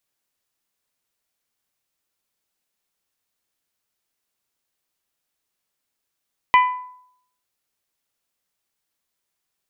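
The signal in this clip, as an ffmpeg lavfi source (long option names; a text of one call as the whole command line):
ffmpeg -f lavfi -i "aevalsrc='0.376*pow(10,-3*t/0.68)*sin(2*PI*1000*t)+0.188*pow(10,-3*t/0.419)*sin(2*PI*2000*t)+0.0944*pow(10,-3*t/0.368)*sin(2*PI*2400*t)+0.0473*pow(10,-3*t/0.315)*sin(2*PI*3000*t)':duration=0.89:sample_rate=44100" out.wav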